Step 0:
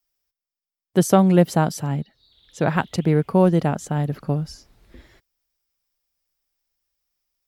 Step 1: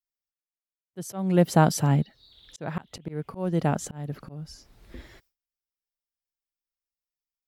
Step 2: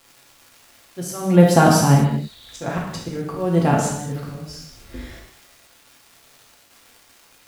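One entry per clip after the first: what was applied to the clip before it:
gate with hold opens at -55 dBFS; auto swell 0.634 s; gain +3 dB
crackle 420/s -44 dBFS; non-linear reverb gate 0.28 s falling, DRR -3 dB; gain +4.5 dB

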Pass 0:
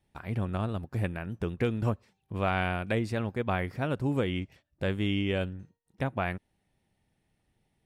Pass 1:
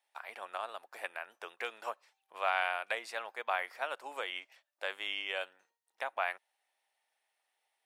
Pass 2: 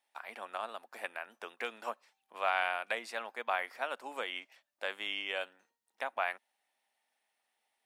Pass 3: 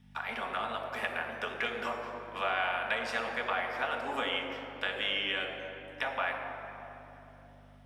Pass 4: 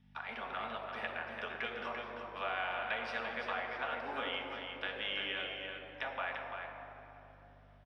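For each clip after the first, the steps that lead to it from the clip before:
HPF 680 Hz 24 dB/oct
bell 230 Hz +13 dB 0.64 oct
compressor 3:1, threshold -41 dBFS, peak gain reduction 11.5 dB; hum 50 Hz, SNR 19 dB; reverb RT60 3.5 s, pre-delay 3 ms, DRR 0 dB; gain +1.5 dB
polynomial smoothing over 15 samples; on a send: echo 0.342 s -6.5 dB; on the sum: gain -6 dB

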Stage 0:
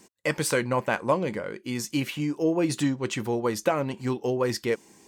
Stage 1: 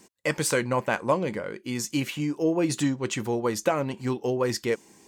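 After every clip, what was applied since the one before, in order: dynamic EQ 7000 Hz, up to +4 dB, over -51 dBFS, Q 2.7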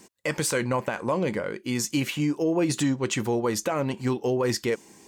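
limiter -19 dBFS, peak gain reduction 9.5 dB; gain +3 dB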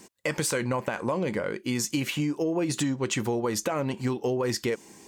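compressor, threshold -25 dBFS, peak gain reduction 5.5 dB; gain +1.5 dB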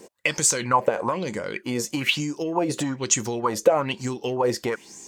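LFO bell 1.1 Hz 470–7100 Hz +17 dB; gain -1 dB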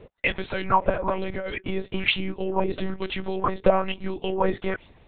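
monotone LPC vocoder at 8 kHz 190 Hz

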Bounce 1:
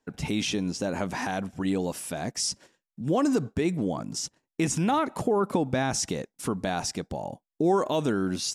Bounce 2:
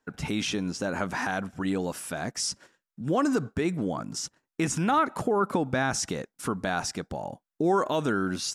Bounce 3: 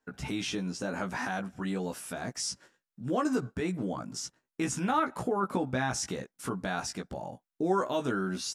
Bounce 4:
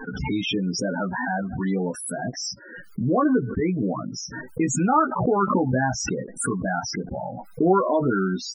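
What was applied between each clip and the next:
bell 1400 Hz +8 dB 0.74 oct; gain -1.5 dB
doubler 16 ms -4 dB; gain -5.5 dB
loudest bins only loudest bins 16; backwards sustainer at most 55 dB/s; gain +8.5 dB

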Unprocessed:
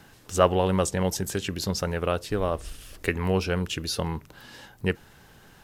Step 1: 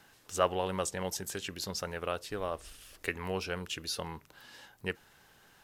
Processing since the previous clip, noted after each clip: low shelf 380 Hz -10 dB; gain -5.5 dB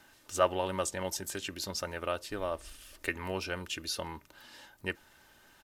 comb 3.3 ms, depth 42%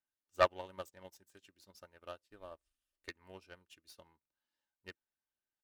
self-modulated delay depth 0.14 ms; upward expander 2.5:1, over -48 dBFS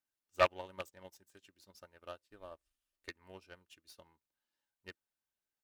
rattling part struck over -50 dBFS, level -25 dBFS

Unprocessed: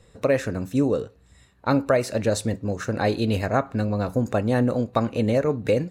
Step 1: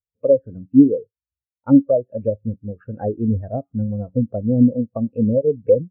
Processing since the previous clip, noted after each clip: resonant high shelf 3900 Hz -9 dB, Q 3; treble ducked by the level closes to 640 Hz, closed at -17 dBFS; spectral expander 2.5:1; gain +6.5 dB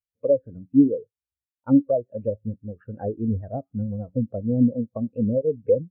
vibrato 6.8 Hz 56 cents; gain -5 dB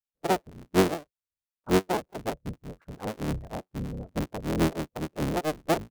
cycle switcher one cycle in 3, inverted; gain -6 dB

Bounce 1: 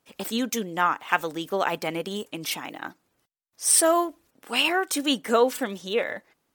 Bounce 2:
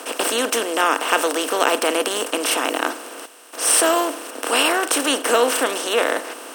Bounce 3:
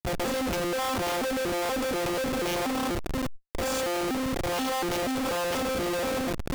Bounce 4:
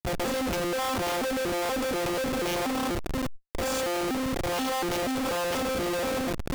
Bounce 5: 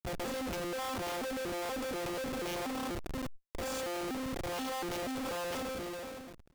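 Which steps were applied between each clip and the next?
per-bin compression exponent 0.4; steep high-pass 270 Hz 36 dB/oct
arpeggiated vocoder bare fifth, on F3, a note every 0.241 s; Schmitt trigger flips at -32.5 dBFS; sustainer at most 42 dB/s; gain -6 dB
nothing audible
ending faded out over 0.98 s; gain -8.5 dB

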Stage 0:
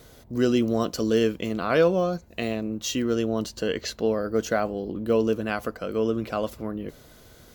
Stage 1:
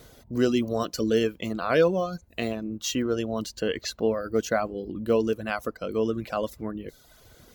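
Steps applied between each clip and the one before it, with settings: reverb removal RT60 0.84 s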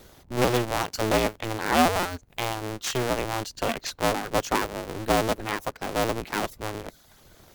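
cycle switcher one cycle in 2, inverted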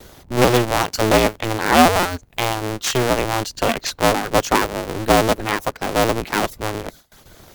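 gate with hold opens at -44 dBFS; gain +8 dB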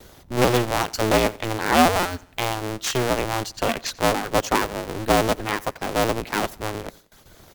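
feedback echo 89 ms, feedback 43%, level -22.5 dB; gain -4 dB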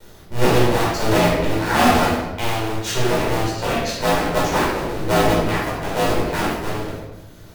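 shoebox room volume 480 m³, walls mixed, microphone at 4.7 m; gain -8.5 dB

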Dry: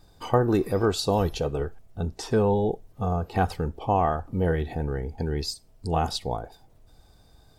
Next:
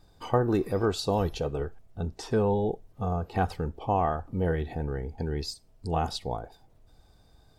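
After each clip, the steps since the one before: high shelf 6600 Hz -4.5 dB; gain -3 dB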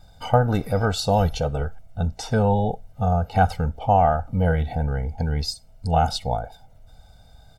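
comb 1.4 ms, depth 89%; gain +4.5 dB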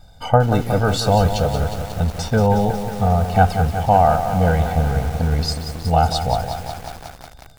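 lo-fi delay 0.182 s, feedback 80%, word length 6-bit, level -9 dB; gain +3.5 dB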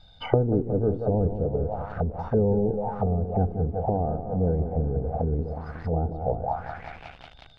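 envelope low-pass 380–4000 Hz down, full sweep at -15 dBFS; gain -8.5 dB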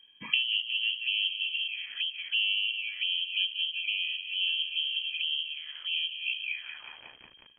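inverted band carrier 3200 Hz; gain -7 dB

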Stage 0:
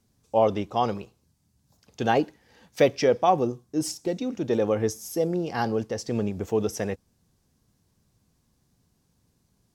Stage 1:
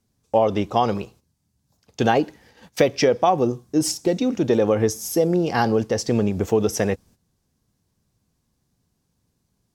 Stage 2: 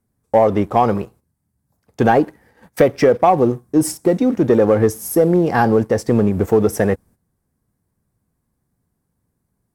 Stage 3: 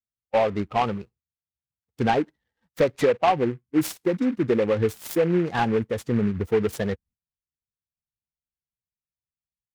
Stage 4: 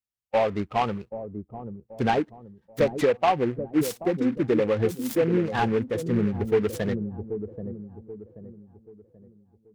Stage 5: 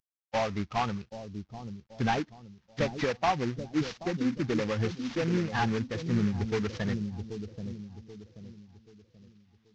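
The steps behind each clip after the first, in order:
gate -55 dBFS, range -11 dB; compressor 4:1, threshold -23 dBFS, peak gain reduction 8 dB; gain +8.5 dB
band shelf 4200 Hz -11.5 dB; sample leveller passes 1; gain +2 dB
per-bin expansion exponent 1.5; noise-modulated delay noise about 1500 Hz, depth 0.048 ms; gain -5.5 dB
dark delay 0.782 s, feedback 37%, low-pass 420 Hz, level -6 dB; gain -1.5 dB
CVSD 32 kbps; bell 460 Hz -10 dB 1.4 oct

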